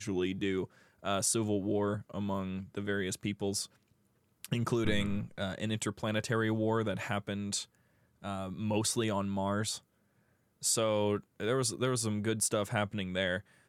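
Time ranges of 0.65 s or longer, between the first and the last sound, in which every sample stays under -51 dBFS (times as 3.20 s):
3.66–4.44 s
9.79–10.62 s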